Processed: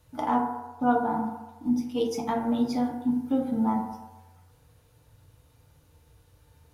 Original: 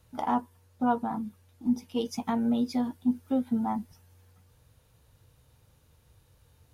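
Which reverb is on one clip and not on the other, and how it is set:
feedback delay network reverb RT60 1.1 s, low-frequency decay 0.7×, high-frequency decay 0.35×, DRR 0 dB

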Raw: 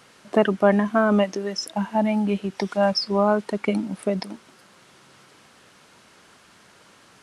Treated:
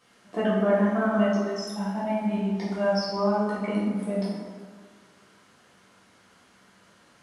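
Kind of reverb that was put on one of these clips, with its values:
dense smooth reverb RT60 1.7 s, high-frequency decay 0.5×, DRR −9 dB
level −14.5 dB

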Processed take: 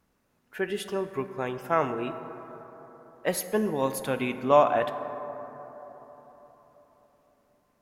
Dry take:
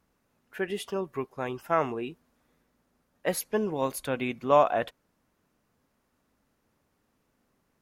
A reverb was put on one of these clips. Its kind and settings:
dense smooth reverb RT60 4.2 s, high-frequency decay 0.3×, DRR 9 dB
level +1 dB

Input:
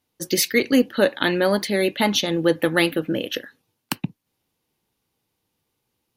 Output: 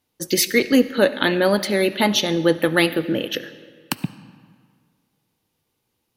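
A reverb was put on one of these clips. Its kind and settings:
comb and all-pass reverb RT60 1.9 s, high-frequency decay 0.7×, pre-delay 30 ms, DRR 14.5 dB
level +1.5 dB

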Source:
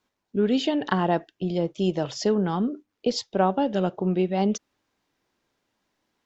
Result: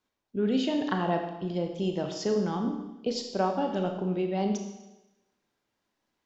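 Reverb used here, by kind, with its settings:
four-comb reverb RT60 1 s, combs from 27 ms, DRR 4 dB
level −6 dB

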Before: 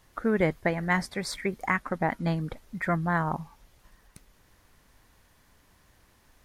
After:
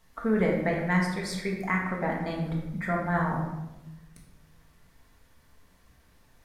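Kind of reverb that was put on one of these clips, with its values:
rectangular room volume 450 cubic metres, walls mixed, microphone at 1.6 metres
level −5 dB

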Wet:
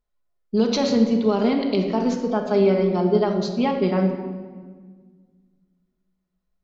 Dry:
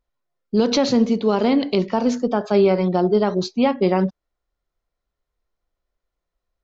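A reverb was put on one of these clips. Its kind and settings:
rectangular room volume 1,800 cubic metres, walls mixed, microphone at 1.4 metres
level −5 dB

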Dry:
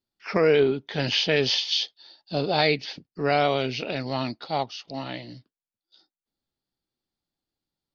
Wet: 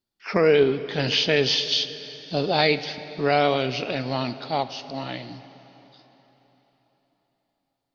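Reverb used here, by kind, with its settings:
dense smooth reverb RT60 4.1 s, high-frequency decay 0.9×, DRR 12.5 dB
level +1.5 dB

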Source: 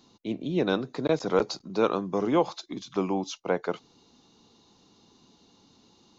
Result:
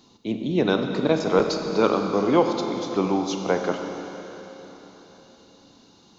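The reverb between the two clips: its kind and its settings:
four-comb reverb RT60 4 s, combs from 28 ms, DRR 4 dB
level +4 dB

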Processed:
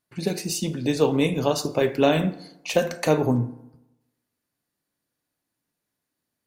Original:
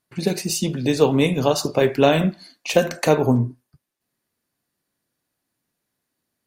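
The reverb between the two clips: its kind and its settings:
feedback delay network reverb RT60 0.95 s, low-frequency decay 1×, high-frequency decay 0.55×, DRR 13 dB
level −4 dB

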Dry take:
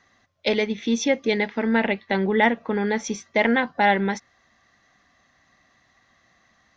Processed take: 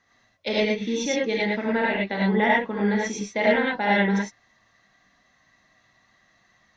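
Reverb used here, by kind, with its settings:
reverb whose tail is shaped and stops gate 130 ms rising, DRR −4.5 dB
level −6.5 dB

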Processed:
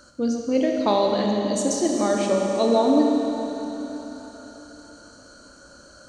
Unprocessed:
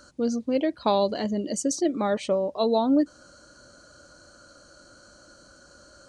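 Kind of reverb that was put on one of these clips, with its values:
four-comb reverb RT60 3.9 s, combs from 27 ms, DRR 0 dB
level +1 dB

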